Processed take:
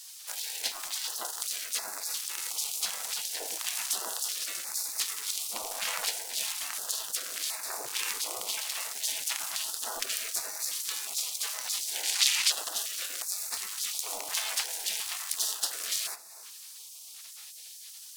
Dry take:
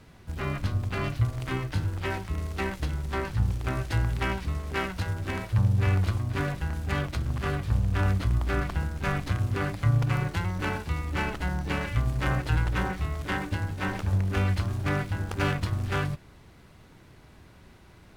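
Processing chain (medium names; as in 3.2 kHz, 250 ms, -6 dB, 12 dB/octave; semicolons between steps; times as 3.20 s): octave divider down 1 oct, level +1 dB; spectral gate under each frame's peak -30 dB weak; 12.03–12.52 s: frequency weighting D; feedback echo behind a low-pass 309 ms, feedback 33%, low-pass 1.2 kHz, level -16 dB; in parallel at 0 dB: compression, threshold -59 dBFS, peak gain reduction 24 dB; on the sum: tone controls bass -4 dB, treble +14 dB; band-stop 570 Hz, Q 12; on a send at -21 dB: reverberation RT60 0.60 s, pre-delay 4 ms; on the sum: step-sequenced notch 2.8 Hz 340–3100 Hz; trim +5.5 dB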